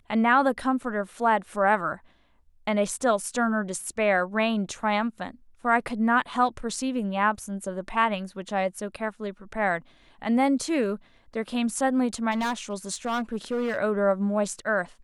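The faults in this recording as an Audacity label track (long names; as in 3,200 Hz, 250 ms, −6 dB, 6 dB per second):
12.310000	13.790000	clipping −23 dBFS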